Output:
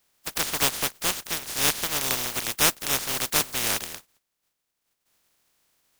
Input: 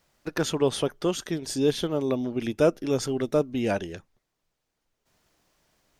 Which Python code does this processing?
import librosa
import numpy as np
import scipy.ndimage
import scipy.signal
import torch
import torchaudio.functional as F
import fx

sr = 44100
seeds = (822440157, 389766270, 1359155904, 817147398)

y = fx.spec_flatten(x, sr, power=0.12)